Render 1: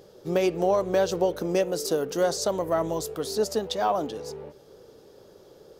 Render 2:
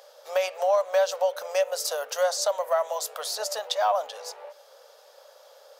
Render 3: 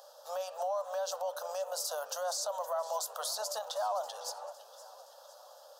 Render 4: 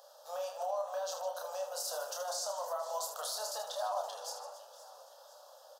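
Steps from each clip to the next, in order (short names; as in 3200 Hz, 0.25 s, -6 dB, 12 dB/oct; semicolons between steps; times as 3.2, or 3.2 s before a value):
elliptic high-pass 560 Hz, stop band 40 dB; in parallel at 0 dB: compressor, threshold -34 dBFS, peak gain reduction 13.5 dB
limiter -24.5 dBFS, peak gain reduction 11.5 dB; fixed phaser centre 900 Hz, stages 4; warbling echo 0.514 s, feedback 54%, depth 140 cents, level -17 dB
reverse bouncing-ball echo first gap 30 ms, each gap 1.6×, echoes 5; gain -4 dB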